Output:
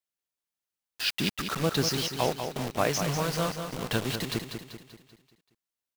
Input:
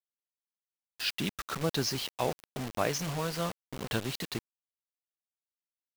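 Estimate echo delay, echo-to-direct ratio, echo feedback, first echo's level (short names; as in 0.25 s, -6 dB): 0.193 s, -6.5 dB, 49%, -7.5 dB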